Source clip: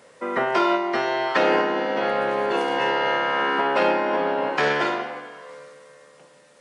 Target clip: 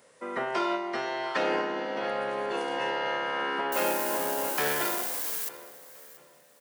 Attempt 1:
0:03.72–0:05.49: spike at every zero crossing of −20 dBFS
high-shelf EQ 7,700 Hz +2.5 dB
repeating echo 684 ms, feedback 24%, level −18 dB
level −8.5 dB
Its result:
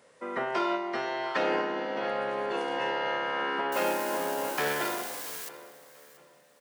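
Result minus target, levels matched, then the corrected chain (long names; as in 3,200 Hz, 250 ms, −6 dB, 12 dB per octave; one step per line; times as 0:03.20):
8,000 Hz band −3.5 dB
0:03.72–0:05.49: spike at every zero crossing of −20 dBFS
high-shelf EQ 7,700 Hz +11.5 dB
repeating echo 684 ms, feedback 24%, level −18 dB
level −8.5 dB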